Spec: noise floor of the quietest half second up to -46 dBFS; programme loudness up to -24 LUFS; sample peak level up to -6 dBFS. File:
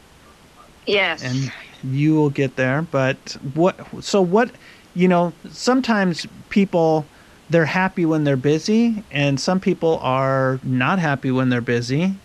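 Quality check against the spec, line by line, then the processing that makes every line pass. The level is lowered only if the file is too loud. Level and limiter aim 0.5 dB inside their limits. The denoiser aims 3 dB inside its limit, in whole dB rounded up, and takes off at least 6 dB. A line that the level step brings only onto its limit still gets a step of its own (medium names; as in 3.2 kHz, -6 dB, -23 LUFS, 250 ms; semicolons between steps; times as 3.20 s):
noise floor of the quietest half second -48 dBFS: pass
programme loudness -19.5 LUFS: fail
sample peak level -4.0 dBFS: fail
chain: trim -5 dB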